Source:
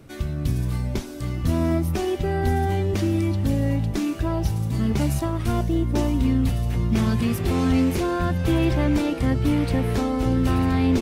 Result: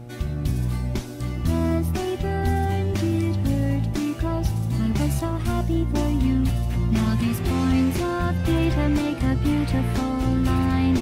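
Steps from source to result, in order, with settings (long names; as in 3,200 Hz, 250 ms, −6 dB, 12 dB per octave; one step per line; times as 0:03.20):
parametric band 460 Hz −12 dB 0.26 octaves
hum with harmonics 120 Hz, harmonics 7, −39 dBFS −7 dB per octave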